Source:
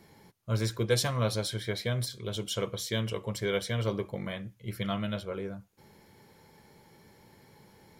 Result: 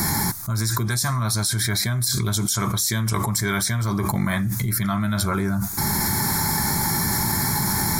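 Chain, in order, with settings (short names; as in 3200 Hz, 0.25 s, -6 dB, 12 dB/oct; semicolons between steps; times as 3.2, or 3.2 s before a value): high shelf 4100 Hz +11.5 dB; fixed phaser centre 1200 Hz, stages 4; fast leveller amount 100%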